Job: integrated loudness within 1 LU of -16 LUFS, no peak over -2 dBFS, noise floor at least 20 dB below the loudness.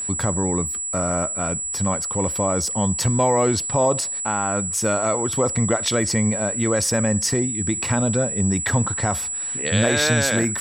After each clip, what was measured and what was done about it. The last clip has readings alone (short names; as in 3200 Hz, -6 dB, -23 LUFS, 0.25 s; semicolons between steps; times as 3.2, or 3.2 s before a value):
steady tone 7800 Hz; tone level -25 dBFS; loudness -20.5 LUFS; peak -6.5 dBFS; loudness target -16.0 LUFS
-> notch 7800 Hz, Q 30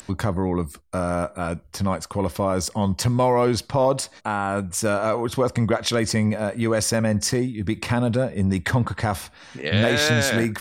steady tone none; loudness -23.0 LUFS; peak -7.5 dBFS; loudness target -16.0 LUFS
-> gain +7 dB; limiter -2 dBFS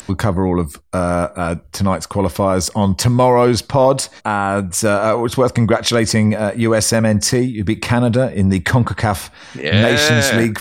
loudness -16.0 LUFS; peak -2.0 dBFS; noise floor -42 dBFS